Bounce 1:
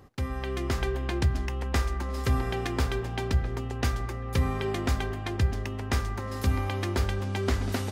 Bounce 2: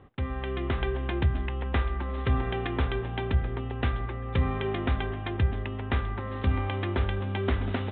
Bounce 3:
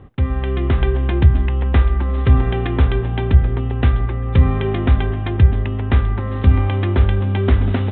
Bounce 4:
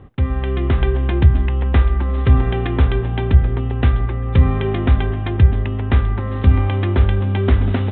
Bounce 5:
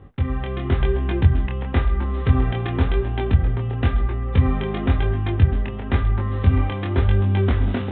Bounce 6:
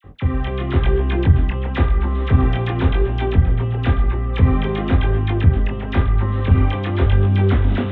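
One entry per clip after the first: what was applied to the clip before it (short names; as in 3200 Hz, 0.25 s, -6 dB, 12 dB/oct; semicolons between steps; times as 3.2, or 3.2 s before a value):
steep low-pass 3700 Hz 96 dB/oct
low shelf 280 Hz +9 dB; gain +5.5 dB
nothing audible
chorus 0.96 Hz, delay 20 ms, depth 4.7 ms
one diode to ground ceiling -12 dBFS; dispersion lows, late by 43 ms, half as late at 1400 Hz; gain +4.5 dB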